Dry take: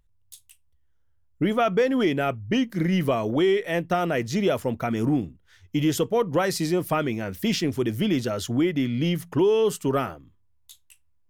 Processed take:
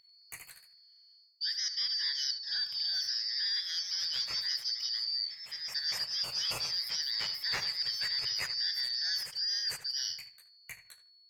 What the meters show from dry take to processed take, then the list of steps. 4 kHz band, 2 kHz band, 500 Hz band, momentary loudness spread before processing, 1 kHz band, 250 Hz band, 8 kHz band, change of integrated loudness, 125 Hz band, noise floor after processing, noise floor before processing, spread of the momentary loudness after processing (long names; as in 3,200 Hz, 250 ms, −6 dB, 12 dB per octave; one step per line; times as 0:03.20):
+6.5 dB, −8.0 dB, −35.0 dB, 5 LU, −22.5 dB, below −40 dB, −2.5 dB, −7.0 dB, −31.0 dB, −61 dBFS, −63 dBFS, 9 LU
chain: band-splitting scrambler in four parts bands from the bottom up 4321
mains-hum notches 50/100 Hz
reversed playback
downward compressor 12 to 1, threshold −32 dBFS, peak gain reduction 16 dB
reversed playback
graphic EQ with 10 bands 125 Hz +10 dB, 250 Hz −10 dB, 2,000 Hz +7 dB, 8,000 Hz −3 dB
on a send: feedback echo with a low-pass in the loop 77 ms, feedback 25%, low-pass 3,700 Hz, level −11 dB
on the sum: delay with pitch and tempo change per echo 93 ms, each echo +1 semitone, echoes 2, each echo −6 dB